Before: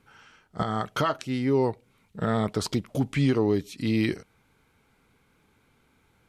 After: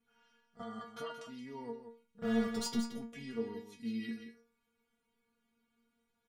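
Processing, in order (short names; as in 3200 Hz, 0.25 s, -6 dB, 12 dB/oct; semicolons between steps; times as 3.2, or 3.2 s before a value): 2.22–2.86 sample leveller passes 3; metallic resonator 230 Hz, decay 0.36 s, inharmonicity 0.002; echo 0.175 s -9.5 dB; gain -2 dB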